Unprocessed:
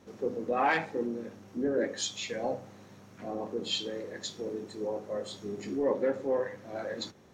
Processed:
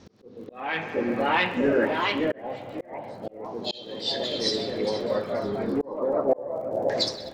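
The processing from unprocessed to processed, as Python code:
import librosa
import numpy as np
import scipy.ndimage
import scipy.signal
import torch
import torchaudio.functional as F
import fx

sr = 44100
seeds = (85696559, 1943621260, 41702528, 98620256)

y = fx.low_shelf(x, sr, hz=160.0, db=7.0)
y = fx.echo_heads(y, sr, ms=81, heads='first and second', feedback_pct=70, wet_db=-20)
y = fx.filter_lfo_lowpass(y, sr, shape='saw_down', hz=0.29, low_hz=470.0, high_hz=5200.0, q=2.9)
y = fx.dmg_crackle(y, sr, seeds[0], per_s=32.0, level_db=-43.0)
y = fx.echo_feedback(y, sr, ms=601, feedback_pct=30, wet_db=-15.0)
y = fx.echo_pitch(y, sr, ms=753, semitones=2, count=2, db_per_echo=-3.0)
y = fx.auto_swell(y, sr, attack_ms=636.0)
y = F.gain(torch.from_numpy(y), 4.5).numpy()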